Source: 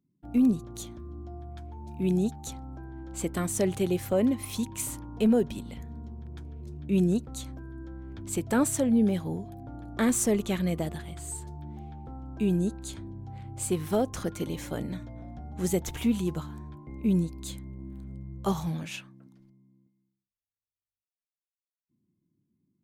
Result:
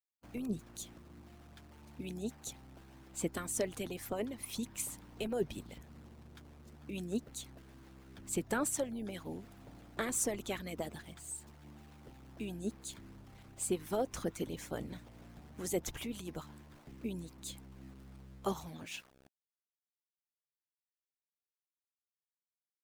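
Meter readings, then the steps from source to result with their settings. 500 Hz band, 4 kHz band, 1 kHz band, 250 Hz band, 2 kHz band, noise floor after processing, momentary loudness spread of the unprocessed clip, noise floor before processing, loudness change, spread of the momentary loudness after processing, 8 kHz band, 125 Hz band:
-9.0 dB, -5.0 dB, -7.0 dB, -14.0 dB, -5.0 dB, under -85 dBFS, 18 LU, under -85 dBFS, -11.0 dB, 20 LU, -5.0 dB, -14.5 dB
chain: small samples zeroed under -47 dBFS; harmonic-percussive split harmonic -16 dB; trim -3.5 dB

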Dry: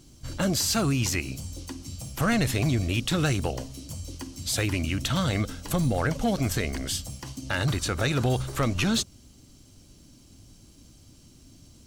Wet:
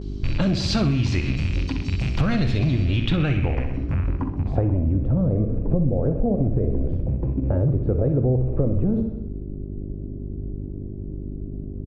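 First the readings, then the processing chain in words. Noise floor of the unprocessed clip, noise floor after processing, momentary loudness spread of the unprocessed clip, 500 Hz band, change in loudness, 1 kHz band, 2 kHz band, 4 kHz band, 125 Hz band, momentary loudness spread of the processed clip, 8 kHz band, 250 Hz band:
-54 dBFS, -33 dBFS, 14 LU, +4.5 dB, +3.5 dB, -3.5 dB, -4.0 dB, -3.5 dB, +7.0 dB, 13 LU, under -10 dB, +5.0 dB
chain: rattle on loud lows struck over -37 dBFS, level -26 dBFS; tilt EQ -3 dB/octave; low-pass sweep 4.2 kHz -> 500 Hz, 2.81–5.03 s; feedback delay 63 ms, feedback 51%, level -10 dB; gate with hold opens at -39 dBFS; mains buzz 50 Hz, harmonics 8, -38 dBFS -4 dB/octave; de-hum 113.7 Hz, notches 27; compression, threshold -23 dBFS, peak gain reduction 12.5 dB; trim +5.5 dB

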